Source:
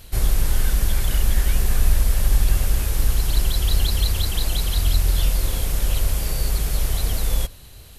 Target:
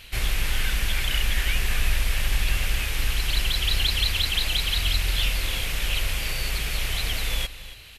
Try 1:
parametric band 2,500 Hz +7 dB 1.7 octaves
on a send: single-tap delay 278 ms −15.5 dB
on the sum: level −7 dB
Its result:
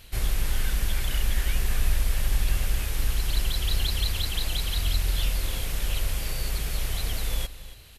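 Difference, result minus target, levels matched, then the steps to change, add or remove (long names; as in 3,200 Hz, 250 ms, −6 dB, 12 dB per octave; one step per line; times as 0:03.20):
2,000 Hz band −5.5 dB
change: parametric band 2,500 Hz +17.5 dB 1.7 octaves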